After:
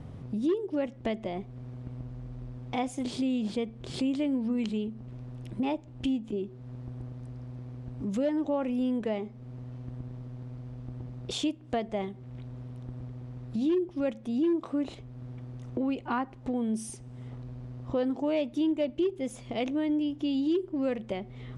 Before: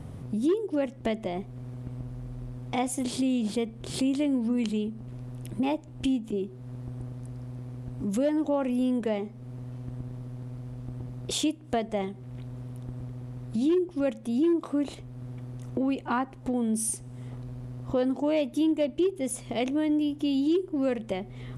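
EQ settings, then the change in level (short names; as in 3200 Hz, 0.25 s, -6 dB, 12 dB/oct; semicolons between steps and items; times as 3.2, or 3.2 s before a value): LPF 5700 Hz 12 dB/oct; -2.5 dB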